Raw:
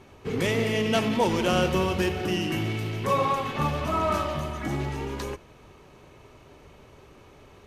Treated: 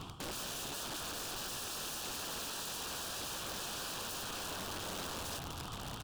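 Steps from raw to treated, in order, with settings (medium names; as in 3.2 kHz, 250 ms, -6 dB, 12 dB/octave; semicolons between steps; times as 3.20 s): peaking EQ 2.2 kHz +4.5 dB 0.63 oct; comb 1.2 ms, depth 85%; de-hum 214.3 Hz, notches 8; reverse; compression 16:1, threshold -37 dBFS, peak gain reduction 21.5 dB; reverse; tape speed +27%; delay 1158 ms -3 dB; on a send at -20 dB: reverberation RT60 2.8 s, pre-delay 105 ms; on the sum: integer overflow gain 39.5 dB; Butterworth band-stop 2.1 kHz, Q 2.6; loudspeaker Doppler distortion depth 0.37 ms; trim +4 dB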